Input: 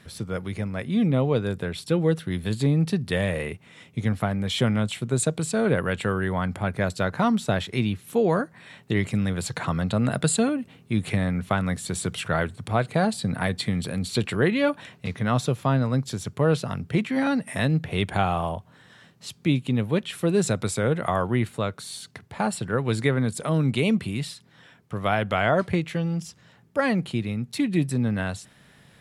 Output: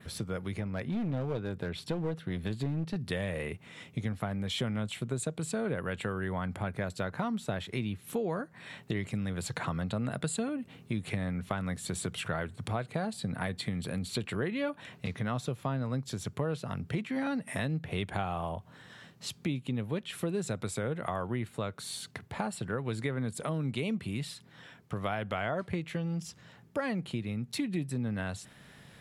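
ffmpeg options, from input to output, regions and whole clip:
ffmpeg -i in.wav -filter_complex "[0:a]asettb=1/sr,asplit=3[link_01][link_02][link_03];[link_01]atrim=end=0.594[link_04];[link_02]atrim=start=0.59:end=2.96,asetpts=PTS-STARTPTS,afade=type=in:duration=0.004:curve=qsin,afade=type=out:start_time=2.366:duration=0.004:curve=qsin,equalizer=frequency=9800:width=0.58:gain=-8.5,aeval=exprs='clip(val(0),-1,0.0631)':channel_layout=same[link_05];[link_03]atrim=start=2.956[link_06];[link_04][link_05]acrossfade=duration=0.004:curve1=hsin:curve2=qsin[link_07];[link_07][link_06]acrossfade=duration=0.004:curve1=qsin:curve2=hsin,equalizer=frequency=9100:width=4.3:gain=-2,acompressor=threshold=-33dB:ratio=3,adynamicequalizer=threshold=0.00126:dfrequency=5400:dqfactor=1.5:tfrequency=5400:tqfactor=1.5:attack=5:release=100:ratio=0.375:range=2:mode=cutabove:tftype=bell" out.wav

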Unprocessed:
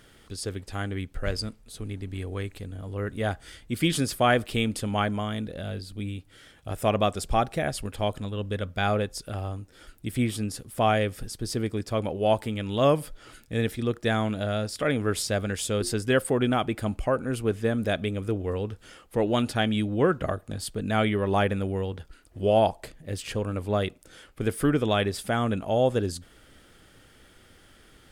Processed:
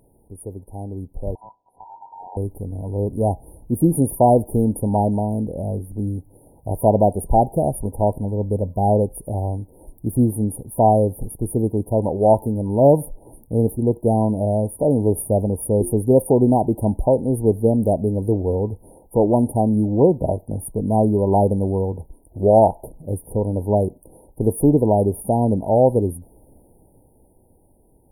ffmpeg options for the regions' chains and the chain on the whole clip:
ffmpeg -i in.wav -filter_complex "[0:a]asettb=1/sr,asplit=3[link_01][link_02][link_03];[link_01]atrim=end=1.354[link_04];[link_02]atrim=start=1.35:end=2.37,asetpts=PTS-STARTPTS,afade=type=in:duration=0.004:curve=qsin,afade=type=out:start_time=1.016:duration=0.004:curve=qsin,lowpass=2300,aeval=exprs='val(0)*sin(2*PI*1200*n/s)':channel_layout=same[link_05];[link_03]atrim=start=2.366[link_06];[link_04][link_05]acrossfade=duration=0.004:curve1=hsin:curve2=qsin[link_07];[link_07][link_06]acrossfade=duration=0.004:curve1=qsin:curve2=hsin,afftfilt=real='re*(1-between(b*sr/4096,980,9300))':imag='im*(1-between(b*sr/4096,980,9300))':win_size=4096:overlap=0.75,dynaudnorm=framelen=300:gausssize=13:maxgain=10dB" out.wav

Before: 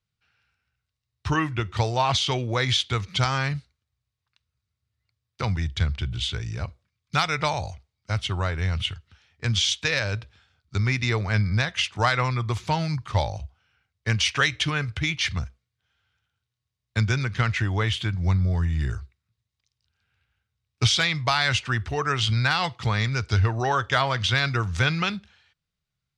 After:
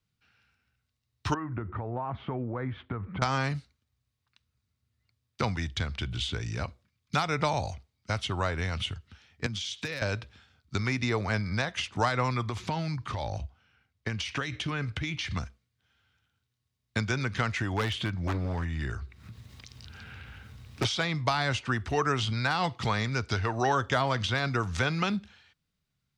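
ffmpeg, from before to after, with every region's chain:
ffmpeg -i in.wav -filter_complex "[0:a]asettb=1/sr,asplit=3[link_01][link_02][link_03];[link_01]atrim=end=1.344[link_04];[link_02]atrim=start=1.34:end=3.22,asetpts=PTS-STARTPTS,afade=type=in:duration=0.004:curve=qsin,afade=type=out:start_time=1.876:duration=0.004:curve=qsin,lowpass=frequency=1500:width=0.5412,lowpass=frequency=1500:width=1.3066,acompressor=threshold=-32dB:ratio=8:attack=3.2:release=140:knee=1:detection=peak[link_05];[link_03]atrim=start=3.216[link_06];[link_04][link_05]acrossfade=duration=0.004:curve1=hsin:curve2=qsin[link_07];[link_07][link_06]acrossfade=duration=0.004:curve1=qsin:curve2=hsin,asettb=1/sr,asplit=3[link_08][link_09][link_10];[link_08]atrim=end=9.464[link_11];[link_09]atrim=start=9.46:end=10.02,asetpts=PTS-STARTPTS,afade=type=in:duration=0.004:curve=qsin,afade=type=out:start_time=0.556:duration=0.004:curve=qsin,highpass=frequency=84:width=0.5412,highpass=frequency=84:width=1.3066,acompressor=threshold=-32dB:ratio=5:attack=3.2:release=140:knee=1:detection=peak,asoftclip=type=hard:threshold=-23.5dB[link_12];[link_10]atrim=start=10.016[link_13];[link_11][link_12]acrossfade=duration=0.004:curve1=hsin:curve2=qsin[link_14];[link_14][link_13]acrossfade=duration=0.004:curve1=qsin:curve2=hsin,asettb=1/sr,asplit=3[link_15][link_16][link_17];[link_15]atrim=end=12.494[link_18];[link_16]atrim=start=12.49:end=15.31,asetpts=PTS-STARTPTS,afade=type=in:duration=0.004:curve=qsin,afade=type=out:start_time=2.816:duration=0.004:curve=qsin,highshelf=frequency=5600:gain=-6,acompressor=threshold=-28dB:ratio=10:attack=3.2:release=140:knee=1:detection=peak[link_19];[link_17]atrim=start=15.306[link_20];[link_18][link_19]acrossfade=duration=0.004:curve1=hsin:curve2=qsin[link_21];[link_21][link_20]acrossfade=duration=0.004:curve1=qsin:curve2=hsin,asettb=1/sr,asplit=3[link_22][link_23][link_24];[link_22]atrim=end=17.734[link_25];[link_23]atrim=start=17.73:end=20.85,asetpts=PTS-STARTPTS,afade=type=in:duration=0.004:curve=qsin,afade=type=out:start_time=3.116:duration=0.004:curve=qsin,highshelf=frequency=4100:gain=-8.5,acompressor=mode=upward:threshold=-25dB:ratio=2.5:attack=3.2:release=140:knee=2.83:detection=peak,aeval=exprs='0.133*(abs(mod(val(0)/0.133+3,4)-2)-1)':channel_layout=same[link_26];[link_24]atrim=start=20.846[link_27];[link_25][link_26]acrossfade=duration=0.004:curve1=hsin:curve2=qsin[link_28];[link_28][link_27]acrossfade=duration=0.004:curve1=qsin:curve2=hsin,acrossover=split=460|1100|5700[link_29][link_30][link_31][link_32];[link_29]acompressor=threshold=-35dB:ratio=4[link_33];[link_30]acompressor=threshold=-29dB:ratio=4[link_34];[link_31]acompressor=threshold=-35dB:ratio=4[link_35];[link_32]acompressor=threshold=-47dB:ratio=4[link_36];[link_33][link_34][link_35][link_36]amix=inputs=4:normalize=0,equalizer=frequency=250:width_type=o:width=0.91:gain=8,volume=1.5dB" out.wav

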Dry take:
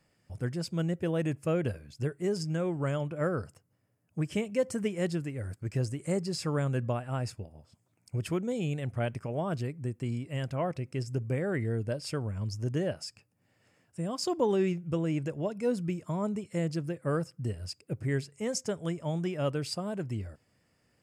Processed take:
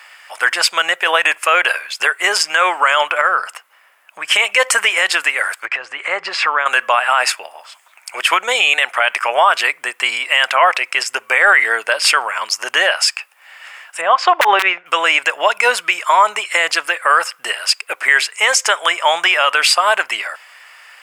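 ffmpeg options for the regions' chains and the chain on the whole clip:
ffmpeg -i in.wav -filter_complex "[0:a]asettb=1/sr,asplit=3[link_01][link_02][link_03];[link_01]atrim=end=3.214[link_04];[link_02]atrim=start=3.21:end=4.28,asetpts=PTS-STARTPTS,afade=type=in:duration=0.004:curve=qsin,afade=type=out:start_time=1.066:duration=0.004:curve=qsin,bass=frequency=250:gain=10,treble=frequency=4000:gain=-3,acompressor=threshold=-33dB:ratio=3:attack=3.2:release=140:knee=1:detection=peak[link_05];[link_03]atrim=start=4.276[link_06];[link_04][link_05]acrossfade=duration=0.004:curve1=hsin:curve2=qsin[link_07];[link_07][link_06]acrossfade=duration=0.004:curve1=qsin:curve2=hsin,asettb=1/sr,asplit=3[link_08][link_09][link_10];[link_08]atrim=end=5.654[link_11];[link_09]atrim=start=5.65:end=6.66,asetpts=PTS-STARTPTS,afade=type=in:duration=0.004:curve=qsin,afade=type=out:start_time=1.006:duration=0.004:curve=qsin,lowpass=2600,equalizer=frequency=120:width_type=o:width=0.84:gain=10,acompressor=threshold=-28dB:ratio=16:attack=3.2:release=140:knee=1:detection=peak[link_12];[link_10]atrim=start=6.656[link_13];[link_11][link_12]acrossfade=duration=0.004:curve1=hsin:curve2=qsin[link_14];[link_14][link_13]acrossfade=duration=0.004:curve1=qsin:curve2=hsin,asettb=1/sr,asplit=3[link_15][link_16][link_17];[link_15]atrim=end=14.014[link_18];[link_16]atrim=start=14.01:end=14.86,asetpts=PTS-STARTPTS,afade=type=in:duration=0.004:curve=qsin,afade=type=out:start_time=0.846:duration=0.004:curve=qsin,lowpass=2100,equalizer=frequency=640:width_type=o:width=0.74:gain=3.5,aeval=exprs='(mod(8.41*val(0)+1,2)-1)/8.41':channel_layout=same[link_19];[link_17]atrim=start=14.856[link_20];[link_18][link_19]acrossfade=duration=0.004:curve1=hsin:curve2=qsin[link_21];[link_21][link_20]acrossfade=duration=0.004:curve1=qsin:curve2=hsin,highpass=frequency=960:width=0.5412,highpass=frequency=960:width=1.3066,highshelf=frequency=3900:width_type=q:width=1.5:gain=-7,alimiter=level_in=35.5dB:limit=-1dB:release=50:level=0:latency=1,volume=-1dB" out.wav

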